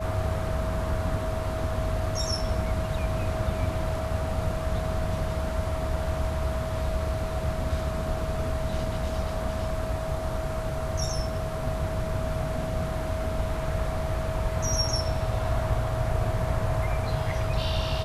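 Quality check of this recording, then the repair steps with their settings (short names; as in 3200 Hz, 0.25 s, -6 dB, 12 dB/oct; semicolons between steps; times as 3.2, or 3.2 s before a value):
tone 640 Hz -33 dBFS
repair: notch 640 Hz, Q 30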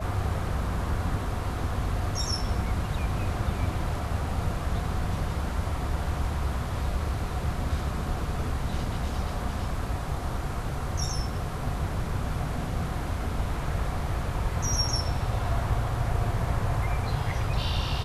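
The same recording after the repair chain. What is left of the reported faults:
none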